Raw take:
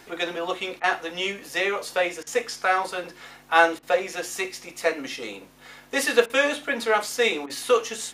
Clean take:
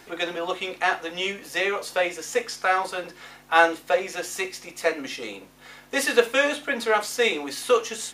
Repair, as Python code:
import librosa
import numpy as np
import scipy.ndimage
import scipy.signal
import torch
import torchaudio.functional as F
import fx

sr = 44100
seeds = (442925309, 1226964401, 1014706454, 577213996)

y = fx.fix_interpolate(x, sr, at_s=(0.8, 2.23, 3.79, 6.26, 7.46), length_ms=37.0)